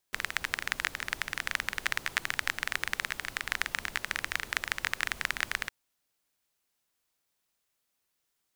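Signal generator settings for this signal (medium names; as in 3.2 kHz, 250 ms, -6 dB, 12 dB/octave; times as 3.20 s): rain from filtered ticks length 5.56 s, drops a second 19, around 1.8 kHz, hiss -13 dB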